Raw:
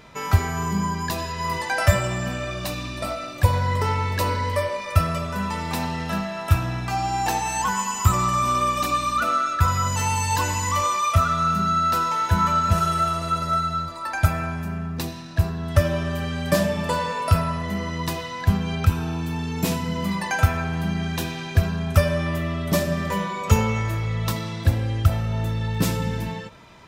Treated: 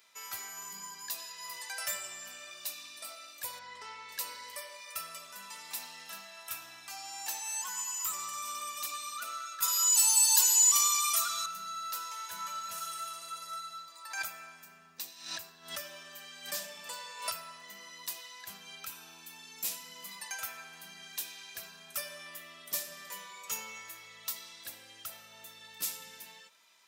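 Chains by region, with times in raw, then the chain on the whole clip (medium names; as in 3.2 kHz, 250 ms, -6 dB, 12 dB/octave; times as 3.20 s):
3.59–4.09 s: distance through air 110 m + band-stop 560 Hz
9.62–11.46 s: high-pass 160 Hz 6 dB/octave + treble shelf 2.8 kHz +11.5 dB + comb 4.3 ms, depth 92%
13.80–17.81 s: peaking EQ 11 kHz -13 dB 0.21 oct + swell ahead of each attack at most 98 dB/s
whole clip: high-pass 170 Hz 12 dB/octave; differentiator; trim -4 dB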